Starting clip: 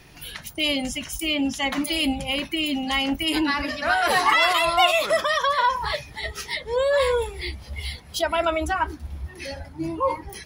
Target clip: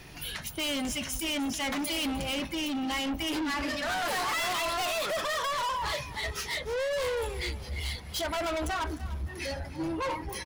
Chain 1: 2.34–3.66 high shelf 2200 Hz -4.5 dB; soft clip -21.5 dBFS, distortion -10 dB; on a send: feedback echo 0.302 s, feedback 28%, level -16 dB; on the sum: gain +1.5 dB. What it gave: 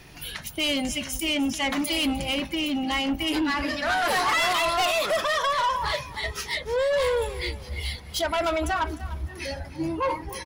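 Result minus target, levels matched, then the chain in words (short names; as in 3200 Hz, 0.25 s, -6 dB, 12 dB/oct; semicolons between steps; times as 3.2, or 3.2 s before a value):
soft clip: distortion -6 dB
2.34–3.66 high shelf 2200 Hz -4.5 dB; soft clip -30.5 dBFS, distortion -4 dB; on a send: feedback echo 0.302 s, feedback 28%, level -16 dB; on the sum: gain +1.5 dB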